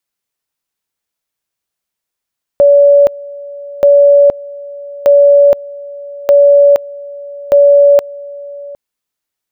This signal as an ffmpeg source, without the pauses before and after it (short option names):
-f lavfi -i "aevalsrc='pow(10,(-2.5-21.5*gte(mod(t,1.23),0.47))/20)*sin(2*PI*570*t)':d=6.15:s=44100"